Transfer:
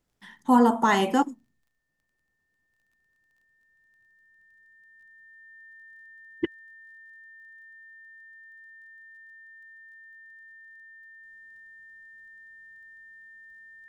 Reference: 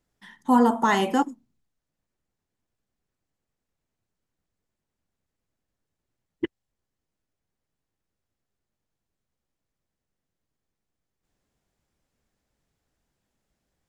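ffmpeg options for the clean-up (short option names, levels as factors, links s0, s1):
-af "adeclick=t=4,bandreject=f=1800:w=30"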